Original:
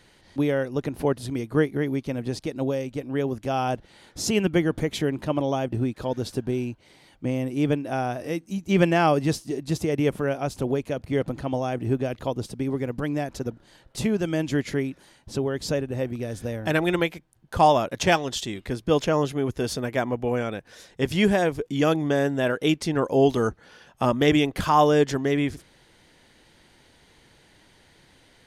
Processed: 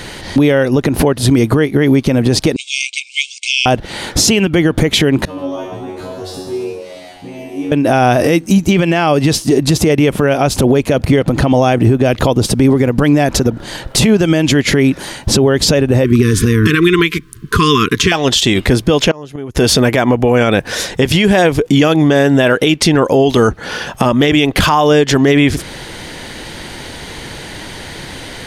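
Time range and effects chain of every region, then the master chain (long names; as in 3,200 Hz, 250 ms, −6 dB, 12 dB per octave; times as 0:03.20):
0:02.56–0:03.66: one scale factor per block 7 bits + linear-phase brick-wall band-pass 2,100–8,900 Hz
0:05.25–0:07.72: downward compressor 2 to 1, threshold −46 dBFS + tuned comb filter 93 Hz, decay 0.62 s, mix 100% + echo with shifted repeats 133 ms, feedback 60%, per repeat +87 Hz, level −8.5 dB
0:16.04–0:18.12: linear-phase brick-wall band-stop 460–1,000 Hz + parametric band 620 Hz +11.5 dB 0.62 octaves
0:19.11–0:19.55: gate with flip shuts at −23 dBFS, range −28 dB + highs frequency-modulated by the lows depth 0.34 ms
whole clip: dynamic equaliser 3,000 Hz, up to +5 dB, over −40 dBFS, Q 1.1; downward compressor 10 to 1, threshold −31 dBFS; boost into a limiter +29 dB; level −1 dB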